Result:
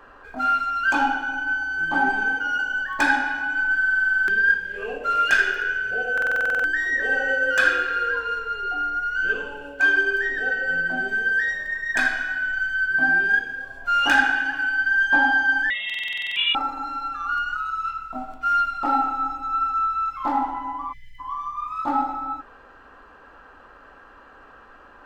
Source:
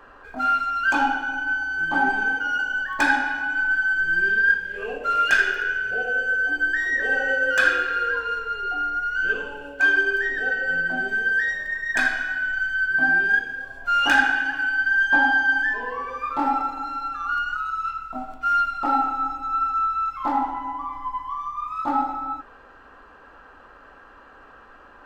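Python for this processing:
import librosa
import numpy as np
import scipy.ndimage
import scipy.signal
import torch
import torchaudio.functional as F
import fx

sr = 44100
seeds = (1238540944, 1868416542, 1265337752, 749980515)

y = fx.freq_invert(x, sr, carrier_hz=3700, at=(15.7, 16.55))
y = fx.spec_erase(y, sr, start_s=20.93, length_s=0.26, low_hz=210.0, high_hz=1700.0)
y = fx.buffer_glitch(y, sr, at_s=(3.77, 6.13, 15.85), block=2048, repeats=10)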